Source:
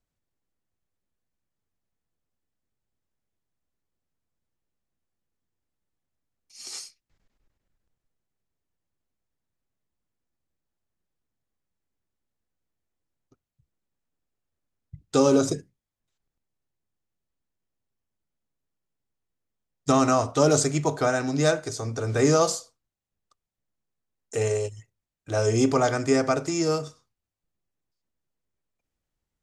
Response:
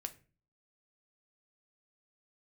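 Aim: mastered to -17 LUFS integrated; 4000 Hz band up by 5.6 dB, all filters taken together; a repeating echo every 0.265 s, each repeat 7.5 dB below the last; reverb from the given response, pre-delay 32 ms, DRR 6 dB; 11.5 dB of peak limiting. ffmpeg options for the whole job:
-filter_complex "[0:a]equalizer=f=4k:t=o:g=7.5,alimiter=limit=-18.5dB:level=0:latency=1,aecho=1:1:265|530|795|1060|1325:0.422|0.177|0.0744|0.0312|0.0131,asplit=2[a][b];[1:a]atrim=start_sample=2205,adelay=32[c];[b][c]afir=irnorm=-1:irlink=0,volume=-3.5dB[d];[a][d]amix=inputs=2:normalize=0,volume=11.5dB"

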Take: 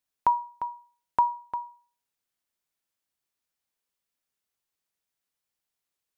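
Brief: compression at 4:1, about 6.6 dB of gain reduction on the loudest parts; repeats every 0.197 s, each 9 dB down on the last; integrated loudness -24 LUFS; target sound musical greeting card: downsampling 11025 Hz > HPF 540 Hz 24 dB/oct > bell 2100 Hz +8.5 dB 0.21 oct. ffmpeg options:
-af "acompressor=threshold=-25dB:ratio=4,aecho=1:1:197|394|591|788:0.355|0.124|0.0435|0.0152,aresample=11025,aresample=44100,highpass=f=540:w=0.5412,highpass=f=540:w=1.3066,equalizer=f=2.1k:t=o:w=0.21:g=8.5,volume=10dB"

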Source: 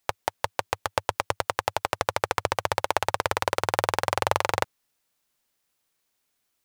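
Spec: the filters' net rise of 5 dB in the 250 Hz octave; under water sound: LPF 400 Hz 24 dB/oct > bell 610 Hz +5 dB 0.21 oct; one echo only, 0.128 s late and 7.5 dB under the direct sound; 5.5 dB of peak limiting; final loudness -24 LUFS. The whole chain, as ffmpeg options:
-af "equalizer=f=250:t=o:g=8.5,alimiter=limit=-7.5dB:level=0:latency=1,lowpass=f=400:w=0.5412,lowpass=f=400:w=1.3066,equalizer=f=610:t=o:w=0.21:g=5,aecho=1:1:128:0.422,volume=16.5dB"

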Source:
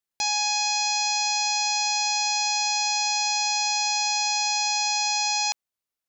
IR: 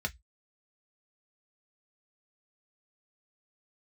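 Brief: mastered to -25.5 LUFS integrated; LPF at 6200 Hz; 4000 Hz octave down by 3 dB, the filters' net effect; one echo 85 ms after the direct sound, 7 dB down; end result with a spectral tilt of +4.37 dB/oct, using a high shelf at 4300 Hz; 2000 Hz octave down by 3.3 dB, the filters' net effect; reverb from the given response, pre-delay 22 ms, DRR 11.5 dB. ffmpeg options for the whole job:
-filter_complex "[0:a]lowpass=6.2k,equalizer=f=2k:t=o:g=-4,equalizer=f=4k:t=o:g=-6,highshelf=f=4.3k:g=7,aecho=1:1:85:0.447,asplit=2[a][b];[1:a]atrim=start_sample=2205,adelay=22[c];[b][c]afir=irnorm=-1:irlink=0,volume=-15.5dB[d];[a][d]amix=inputs=2:normalize=0,volume=-2.5dB"

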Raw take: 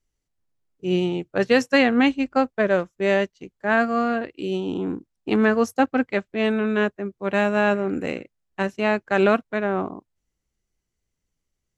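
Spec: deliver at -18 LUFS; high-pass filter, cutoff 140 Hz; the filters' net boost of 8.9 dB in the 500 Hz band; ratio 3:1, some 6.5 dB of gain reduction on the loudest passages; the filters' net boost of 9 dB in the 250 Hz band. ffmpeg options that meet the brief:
-af "highpass=140,equalizer=f=250:t=o:g=9,equalizer=f=500:t=o:g=8.5,acompressor=threshold=-13dB:ratio=3,volume=0.5dB"

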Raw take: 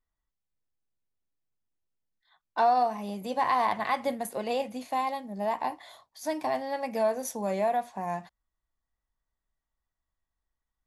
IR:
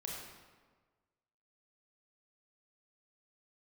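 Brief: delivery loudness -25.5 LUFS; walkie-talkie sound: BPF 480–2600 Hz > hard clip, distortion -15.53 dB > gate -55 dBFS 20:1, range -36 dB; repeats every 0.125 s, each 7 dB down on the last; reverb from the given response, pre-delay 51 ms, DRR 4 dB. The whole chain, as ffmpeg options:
-filter_complex "[0:a]aecho=1:1:125|250|375|500|625:0.447|0.201|0.0905|0.0407|0.0183,asplit=2[a][b];[1:a]atrim=start_sample=2205,adelay=51[c];[b][c]afir=irnorm=-1:irlink=0,volume=-3.5dB[d];[a][d]amix=inputs=2:normalize=0,highpass=480,lowpass=2.6k,asoftclip=type=hard:threshold=-20.5dB,agate=range=-36dB:threshold=-55dB:ratio=20,volume=4dB"

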